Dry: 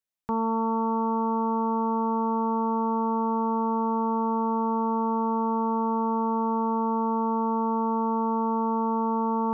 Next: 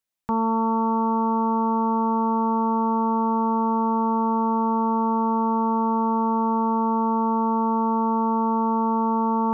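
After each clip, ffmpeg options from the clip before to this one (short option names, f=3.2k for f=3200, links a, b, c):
-af "bandreject=f=430:w=12,volume=4dB"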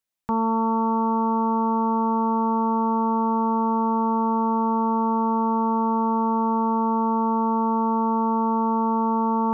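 -af anull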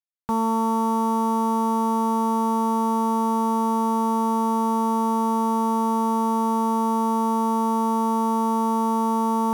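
-af "acrusher=bits=5:mix=0:aa=0.5"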